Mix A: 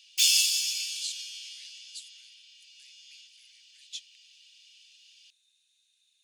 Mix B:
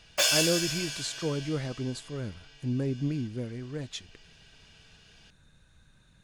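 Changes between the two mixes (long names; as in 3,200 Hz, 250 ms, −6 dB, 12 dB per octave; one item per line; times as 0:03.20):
background −3.5 dB
master: remove Butterworth high-pass 2,700 Hz 36 dB per octave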